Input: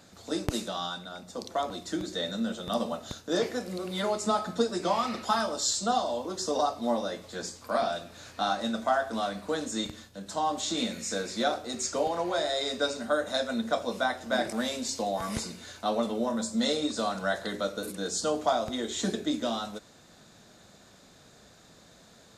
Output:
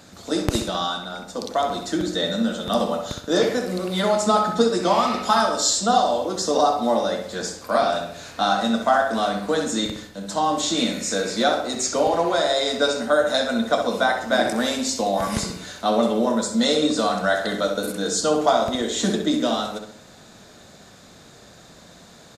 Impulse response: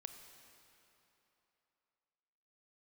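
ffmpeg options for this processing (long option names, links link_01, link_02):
-filter_complex "[0:a]asplit=2[link_01][link_02];[link_02]adelay=65,lowpass=frequency=3400:poles=1,volume=-5.5dB,asplit=2[link_03][link_04];[link_04]adelay=65,lowpass=frequency=3400:poles=1,volume=0.49,asplit=2[link_05][link_06];[link_06]adelay=65,lowpass=frequency=3400:poles=1,volume=0.49,asplit=2[link_07][link_08];[link_08]adelay=65,lowpass=frequency=3400:poles=1,volume=0.49,asplit=2[link_09][link_10];[link_10]adelay=65,lowpass=frequency=3400:poles=1,volume=0.49,asplit=2[link_11][link_12];[link_12]adelay=65,lowpass=frequency=3400:poles=1,volume=0.49[link_13];[link_01][link_03][link_05][link_07][link_09][link_11][link_13]amix=inputs=7:normalize=0,volume=7.5dB"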